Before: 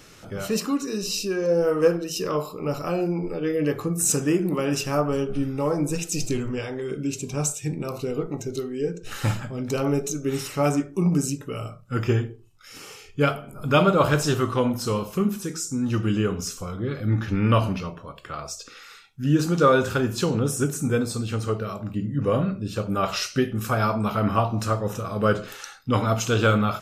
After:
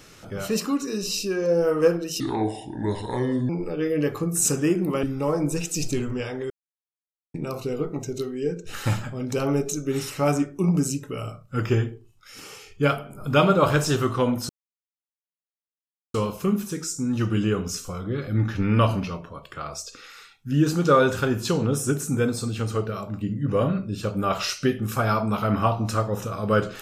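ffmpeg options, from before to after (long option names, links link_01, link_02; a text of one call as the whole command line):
ffmpeg -i in.wav -filter_complex "[0:a]asplit=7[link_01][link_02][link_03][link_04][link_05][link_06][link_07];[link_01]atrim=end=2.204[link_08];[link_02]atrim=start=2.2:end=3.13,asetpts=PTS-STARTPTS,asetrate=31752,aresample=44100,atrim=end_sample=56962,asetpts=PTS-STARTPTS[link_09];[link_03]atrim=start=3.126:end=4.672[link_10];[link_04]atrim=start=5.408:end=6.88,asetpts=PTS-STARTPTS,afade=type=out:start_time=1.468:duration=0.004:curve=hsin[link_11];[link_05]atrim=start=6.88:end=7.72,asetpts=PTS-STARTPTS,volume=0[link_12];[link_06]atrim=start=7.72:end=14.87,asetpts=PTS-STARTPTS,afade=type=in:duration=0.004:curve=hsin,afade=type=out:start_time=7.146:duration=0.004:curve=hsin,apad=pad_dur=1.65[link_13];[link_07]atrim=start=14.87,asetpts=PTS-STARTPTS,afade=type=in:duration=0.004:curve=hsin[link_14];[link_08][link_09]acrossfade=duration=0.004:curve1=hsin:curve2=hsin[link_15];[link_15][link_10]acrossfade=duration=0.004:curve1=hsin:curve2=hsin[link_16];[link_11][link_12][link_13][link_14]concat=n=4:v=0:a=1[link_17];[link_16][link_17]acrossfade=duration=0.004:curve1=hsin:curve2=hsin" out.wav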